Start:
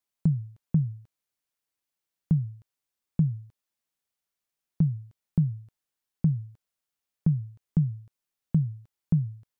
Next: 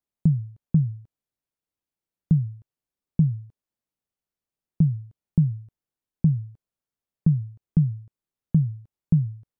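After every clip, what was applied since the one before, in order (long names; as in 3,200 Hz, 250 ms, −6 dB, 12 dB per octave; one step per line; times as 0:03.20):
tilt shelving filter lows +6.5 dB, about 780 Hz
level −2 dB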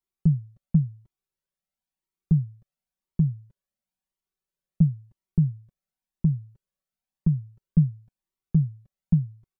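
comb filter 5.3 ms, depth 94%
flanger whose copies keep moving one way rising 0.96 Hz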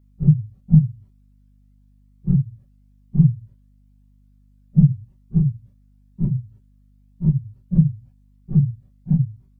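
random phases in long frames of 100 ms
mains hum 50 Hz, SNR 33 dB
level +6 dB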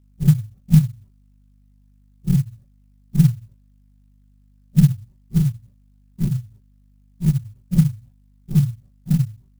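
converter with an unsteady clock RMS 0.06 ms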